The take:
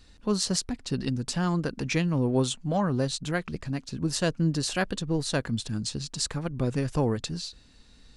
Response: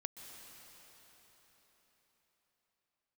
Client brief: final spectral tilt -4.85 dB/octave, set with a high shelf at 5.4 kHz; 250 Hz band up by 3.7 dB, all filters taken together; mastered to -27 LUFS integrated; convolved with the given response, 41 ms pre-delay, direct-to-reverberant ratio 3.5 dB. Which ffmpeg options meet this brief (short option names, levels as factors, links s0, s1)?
-filter_complex "[0:a]equalizer=f=250:t=o:g=5,highshelf=f=5400:g=5.5,asplit=2[s0][s1];[1:a]atrim=start_sample=2205,adelay=41[s2];[s1][s2]afir=irnorm=-1:irlink=0,volume=0.891[s3];[s0][s3]amix=inputs=2:normalize=0,volume=0.75"